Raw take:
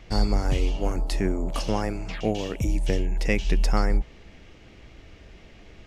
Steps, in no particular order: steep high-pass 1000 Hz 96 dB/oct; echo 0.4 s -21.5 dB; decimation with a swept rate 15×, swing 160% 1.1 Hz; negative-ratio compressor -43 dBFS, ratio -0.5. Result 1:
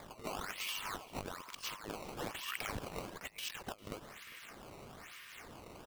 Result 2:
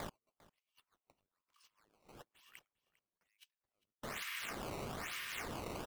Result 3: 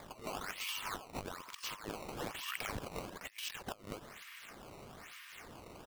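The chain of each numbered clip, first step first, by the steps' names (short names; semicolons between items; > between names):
steep high-pass > decimation with a swept rate > negative-ratio compressor > echo; negative-ratio compressor > steep high-pass > decimation with a swept rate > echo; steep high-pass > negative-ratio compressor > echo > decimation with a swept rate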